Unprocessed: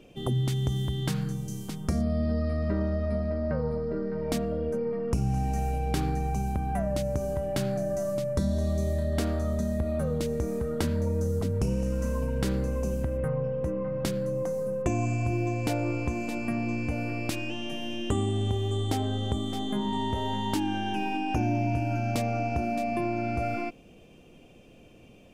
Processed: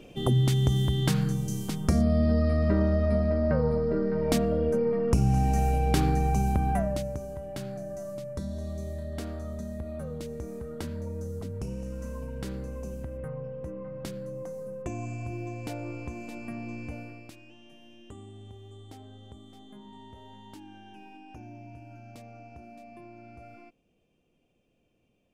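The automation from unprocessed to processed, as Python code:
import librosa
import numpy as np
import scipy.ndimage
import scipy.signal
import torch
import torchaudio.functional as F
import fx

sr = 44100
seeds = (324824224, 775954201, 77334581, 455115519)

y = fx.gain(x, sr, db=fx.line((6.69, 4.0), (7.27, -8.0), (16.94, -8.0), (17.37, -19.0)))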